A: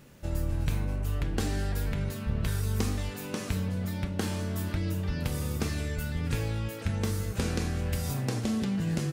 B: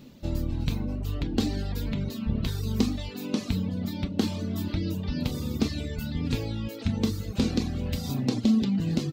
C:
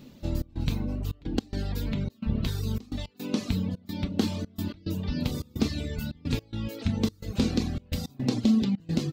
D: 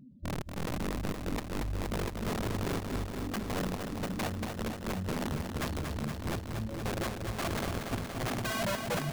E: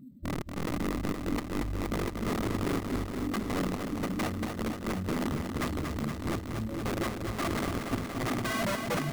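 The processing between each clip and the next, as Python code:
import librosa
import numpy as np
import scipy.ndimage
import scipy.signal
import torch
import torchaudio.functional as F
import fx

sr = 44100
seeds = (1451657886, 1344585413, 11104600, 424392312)

y1 = fx.dereverb_blind(x, sr, rt60_s=0.9)
y1 = fx.graphic_eq_15(y1, sr, hz=(250, 1600, 4000, 10000), db=(11, -7, 8, -11))
y1 = y1 * librosa.db_to_amplitude(1.5)
y2 = fx.step_gate(y1, sr, bpm=108, pattern='xxx.xxxx.x.x', floor_db=-24.0, edge_ms=4.5)
y3 = fx.spec_expand(y2, sr, power=2.4)
y3 = (np.mod(10.0 ** (24.5 / 20.0) * y3 + 1.0, 2.0) - 1.0) / 10.0 ** (24.5 / 20.0)
y3 = fx.echo_crushed(y3, sr, ms=235, feedback_pct=80, bits=11, wet_db=-6.0)
y3 = y3 * librosa.db_to_amplitude(-4.5)
y4 = fx.sample_hold(y3, sr, seeds[0], rate_hz=12000.0, jitter_pct=0)
y4 = fx.small_body(y4, sr, hz=(290.0, 1200.0, 2000.0), ring_ms=20, db=7)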